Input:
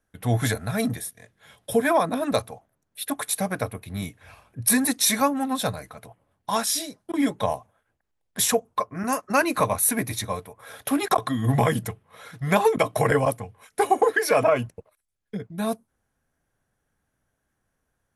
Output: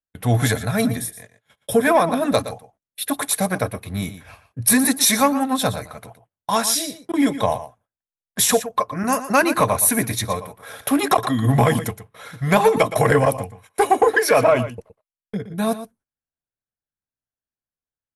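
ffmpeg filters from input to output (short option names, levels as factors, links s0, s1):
-filter_complex "[0:a]agate=range=0.0355:threshold=0.00398:ratio=16:detection=peak,acontrast=86,asplit=2[s0][s1];[s1]aecho=0:1:118:0.224[s2];[s0][s2]amix=inputs=2:normalize=0,aresample=32000,aresample=44100,volume=0.794"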